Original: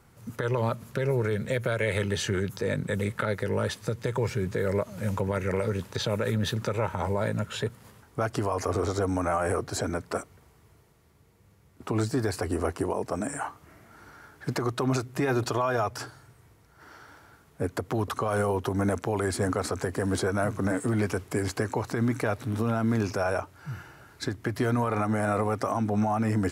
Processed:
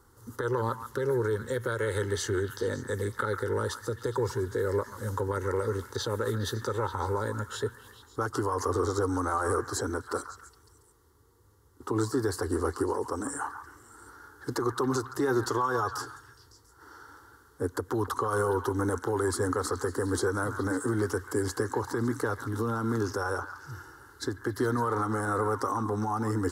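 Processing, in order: fixed phaser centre 650 Hz, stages 6; delay with a stepping band-pass 0.139 s, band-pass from 1300 Hz, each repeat 0.7 oct, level -7 dB; gain +1.5 dB

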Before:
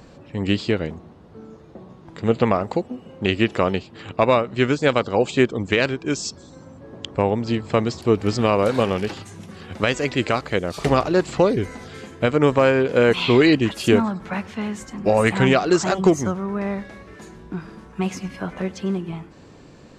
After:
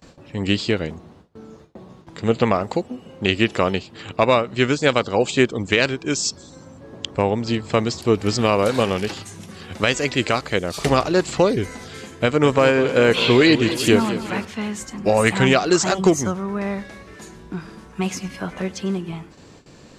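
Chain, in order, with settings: gate with hold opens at -36 dBFS; high shelf 3100 Hz +8 dB; 12.14–14.45 warbling echo 0.209 s, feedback 59%, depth 73 cents, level -12.5 dB

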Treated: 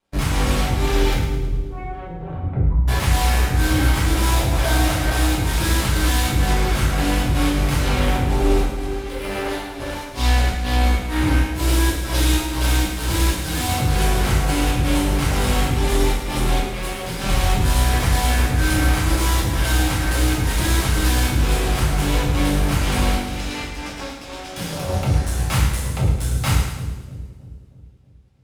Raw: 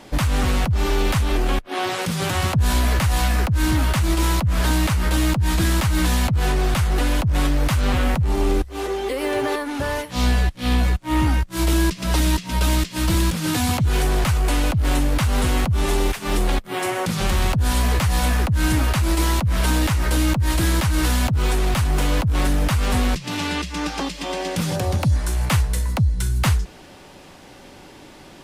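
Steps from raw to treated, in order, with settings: 1.13–2.88 spectral contrast raised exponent 3.3; 4.32–5.25 bell 680 Hz +12 dB 0.3 oct; added harmonics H 3 -22 dB, 5 -43 dB, 6 -26 dB, 7 -19 dB, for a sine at -8.5 dBFS; on a send: split-band echo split 520 Hz, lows 0.318 s, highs 0.108 s, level -9 dB; on the sum: two-slope reverb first 0.6 s, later 2.4 s, from -25 dB, DRR -6 dB; gain -6.5 dB

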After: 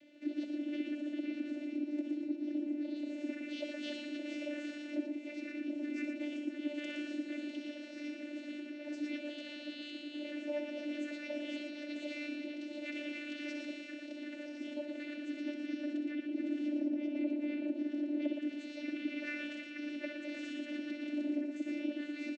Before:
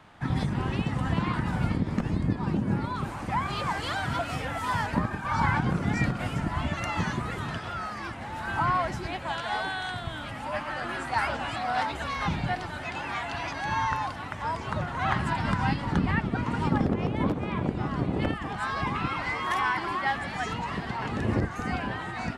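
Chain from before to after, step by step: compressor, threshold -30 dBFS, peak gain reduction 10.5 dB; brick-wall FIR band-stop 620–1900 Hz; vocoder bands 16, saw 295 Hz; low shelf 230 Hz -6.5 dB; on a send: tapped delay 63/116 ms -10/-6 dB; on the sum: gain +1.5 dB

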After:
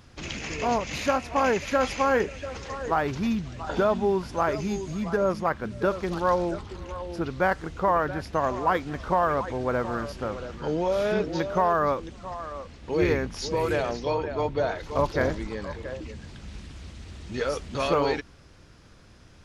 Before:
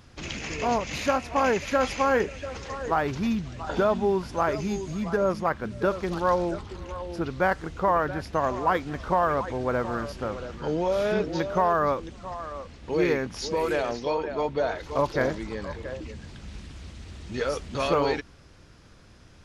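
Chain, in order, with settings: 13.01–15.47 octaver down 2 oct, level -2 dB

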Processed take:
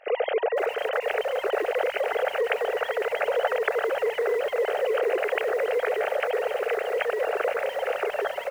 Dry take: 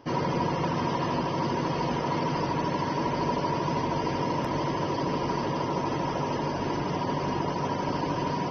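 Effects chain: sine-wave speech; resonant low shelf 390 Hz -8 dB, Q 1.5; fixed phaser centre 410 Hz, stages 4; echo 0.51 s -19 dB; lo-fi delay 0.503 s, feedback 55%, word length 8-bit, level -10.5 dB; gain +8.5 dB

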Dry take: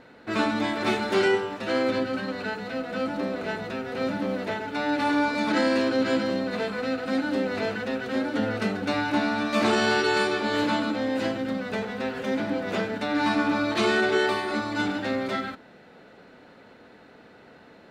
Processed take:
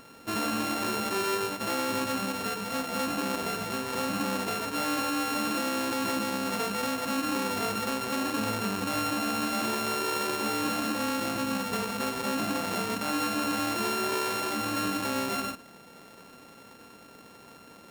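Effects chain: sample sorter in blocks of 32 samples; limiter -21.5 dBFS, peak gain reduction 9 dB

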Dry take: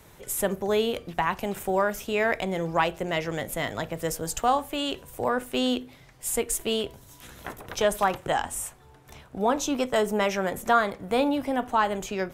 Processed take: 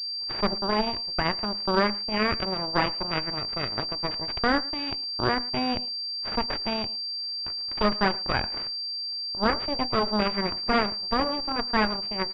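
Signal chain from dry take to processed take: added harmonics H 3 -15 dB, 5 -32 dB, 6 -11 dB, 7 -22 dB, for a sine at -8 dBFS; speakerphone echo 0.11 s, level -20 dB; on a send at -16 dB: reverb RT60 0.30 s, pre-delay 3 ms; on the sum: pulse-width modulation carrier 4700 Hz

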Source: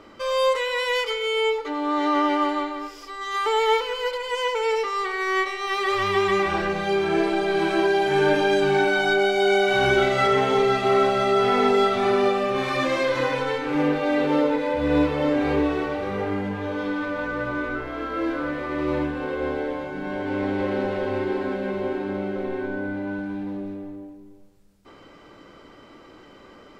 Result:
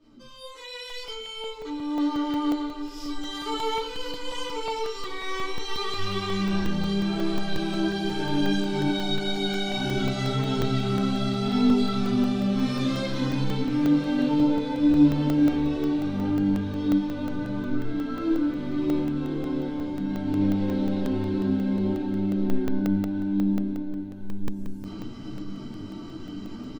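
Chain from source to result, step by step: opening faded in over 3.08 s; graphic EQ 125/250/500/1000/2000/4000 Hz +7/+7/-8/-5/-11/+4 dB; in parallel at -2.5 dB: limiter -16.5 dBFS, peak gain reduction 8 dB; on the sum: spectral noise reduction 14 dB; upward compressor, threshold -23 dBFS; flange 0.67 Hz, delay 6.1 ms, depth 6.1 ms, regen +51%; feedback echo 1.03 s, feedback 42%, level -12.5 dB; shoebox room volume 190 m³, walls furnished, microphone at 2.7 m; dynamic EQ 120 Hz, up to -5 dB, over -29 dBFS, Q 1.2; crackling interface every 0.18 s, samples 64, zero, from 0.9; gain -8 dB

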